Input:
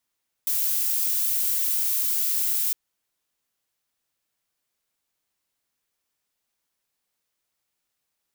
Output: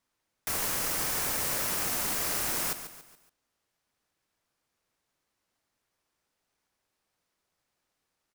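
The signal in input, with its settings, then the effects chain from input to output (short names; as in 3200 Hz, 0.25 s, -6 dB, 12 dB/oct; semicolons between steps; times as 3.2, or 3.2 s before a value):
noise violet, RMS -24 dBFS 2.26 s
high shelf 11000 Hz -11.5 dB; in parallel at -5 dB: sample-and-hold 11×; on the sum: feedback echo 0.141 s, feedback 42%, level -11 dB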